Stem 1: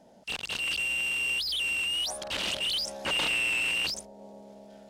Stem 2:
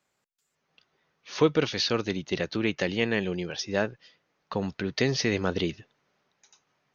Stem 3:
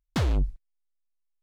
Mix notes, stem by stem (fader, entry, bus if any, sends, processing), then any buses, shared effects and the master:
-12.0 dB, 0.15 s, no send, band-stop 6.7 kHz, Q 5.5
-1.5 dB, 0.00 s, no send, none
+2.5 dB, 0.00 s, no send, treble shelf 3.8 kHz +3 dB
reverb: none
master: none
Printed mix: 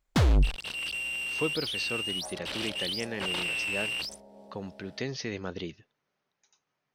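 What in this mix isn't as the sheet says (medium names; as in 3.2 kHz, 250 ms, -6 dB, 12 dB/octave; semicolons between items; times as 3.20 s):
stem 1 -12.0 dB -> -4.0 dB; stem 2 -1.5 dB -> -9.0 dB; stem 3: missing treble shelf 3.8 kHz +3 dB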